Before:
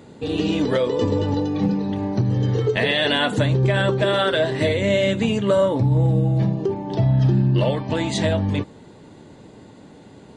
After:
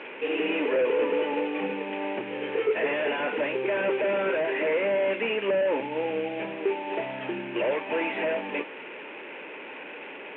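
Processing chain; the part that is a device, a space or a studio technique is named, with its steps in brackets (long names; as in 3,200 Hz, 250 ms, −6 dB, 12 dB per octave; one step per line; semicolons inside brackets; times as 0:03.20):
digital answering machine (band-pass filter 400–3,200 Hz; linear delta modulator 16 kbit/s, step −36 dBFS; loudspeaker in its box 380–3,300 Hz, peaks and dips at 710 Hz −7 dB, 1,200 Hz −7 dB, 2,500 Hz +9 dB)
level +3.5 dB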